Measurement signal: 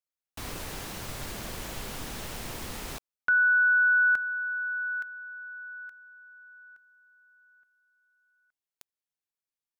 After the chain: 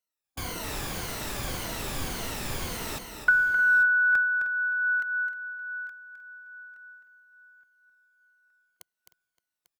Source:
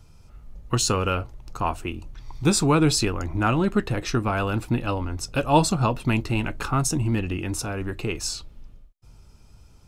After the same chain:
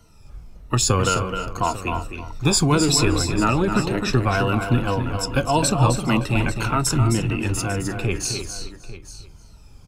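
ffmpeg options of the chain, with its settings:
-filter_complex "[0:a]afftfilt=real='re*pow(10,13/40*sin(2*PI*(1.9*log(max(b,1)*sr/1024/100)/log(2)-(-1.8)*(pts-256)/sr)))':imag='im*pow(10,13/40*sin(2*PI*(1.9*log(max(b,1)*sr/1024/100)/log(2)-(-1.8)*(pts-256)/sr)))':win_size=1024:overlap=0.75,asplit=2[a][b];[b]adelay=309,volume=-12dB,highshelf=f=4k:g=-6.95[c];[a][c]amix=inputs=2:normalize=0,acrossover=split=150|3000[d][e][f];[e]acompressor=threshold=-25dB:ratio=6:attack=63:release=40:knee=2.83:detection=peak[g];[d][g][f]amix=inputs=3:normalize=0,asplit=2[h][i];[i]aecho=0:1:261|846:0.422|0.158[j];[h][j]amix=inputs=2:normalize=0,volume=1.5dB"

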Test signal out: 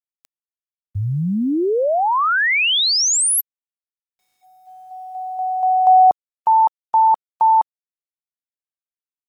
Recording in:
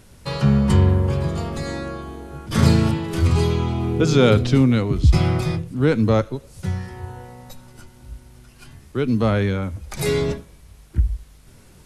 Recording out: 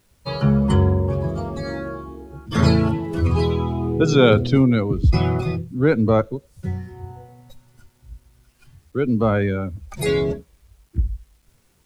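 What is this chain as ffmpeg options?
-af "afftdn=nr=15:nf=-29,lowshelf=f=200:g=-5.5,acrusher=bits=10:mix=0:aa=0.000001,volume=2.5dB"

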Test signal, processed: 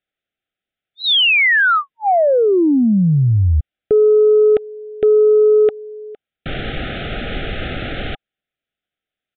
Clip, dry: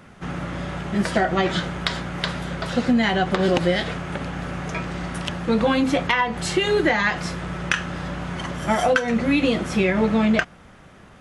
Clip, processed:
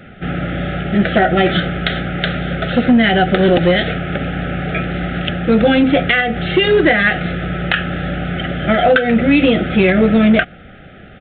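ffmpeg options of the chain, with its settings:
-af "asuperstop=centerf=1000:order=12:qfactor=2.3,aresample=8000,aeval=exprs='0.668*sin(PI/2*2*val(0)/0.668)':c=same,aresample=44100,volume=-1dB"

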